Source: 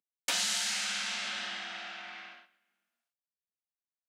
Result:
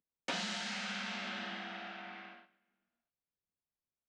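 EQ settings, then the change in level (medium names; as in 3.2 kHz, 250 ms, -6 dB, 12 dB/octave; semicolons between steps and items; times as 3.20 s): tape spacing loss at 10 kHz 36 dB; bass shelf 440 Hz +10.5 dB; treble shelf 4.5 kHz +12 dB; 0.0 dB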